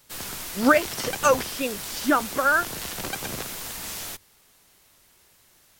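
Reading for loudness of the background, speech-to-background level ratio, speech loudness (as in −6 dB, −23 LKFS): −32.0 LKFS, 8.5 dB, −23.5 LKFS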